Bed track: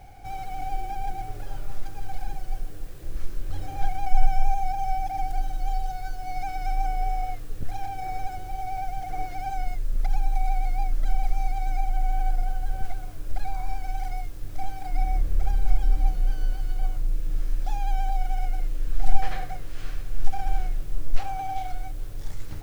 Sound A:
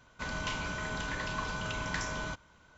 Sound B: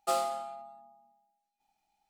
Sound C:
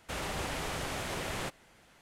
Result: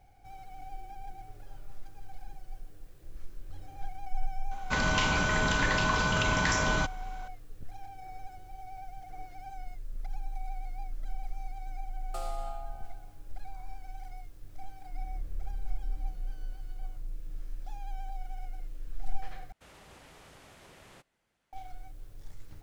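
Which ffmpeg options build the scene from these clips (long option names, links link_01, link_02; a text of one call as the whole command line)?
ffmpeg -i bed.wav -i cue0.wav -i cue1.wav -i cue2.wav -filter_complex "[0:a]volume=-13.5dB[link_01];[1:a]alimiter=level_in=23.5dB:limit=-1dB:release=50:level=0:latency=1[link_02];[2:a]acompressor=threshold=-35dB:ratio=6:attack=3.2:release=140:knee=1:detection=peak[link_03];[link_01]asplit=2[link_04][link_05];[link_04]atrim=end=19.524[link_06];[3:a]atrim=end=2.01,asetpts=PTS-STARTPTS,volume=-18dB[link_07];[link_05]atrim=start=21.526[link_08];[link_02]atrim=end=2.77,asetpts=PTS-STARTPTS,volume=-14.5dB,afade=type=in:duration=0.004:curve=hsin,afade=type=out:start_time=2.766:duration=0.004:curve=hsin,adelay=4510[link_09];[link_03]atrim=end=2.09,asetpts=PTS-STARTPTS,volume=-1.5dB,afade=type=in:duration=0.004:curve=hsin,afade=type=out:start_time=2.086:duration=0.004:curve=hsin,adelay=12070[link_10];[link_06][link_07]acrossfade=duration=0.004:curve1=hsin:curve2=hsin[link_11];[link_11][link_08]acrossfade=duration=0.004:curve1=hsin:curve2=hsin[link_12];[link_12][link_09][link_10]amix=inputs=3:normalize=0" out.wav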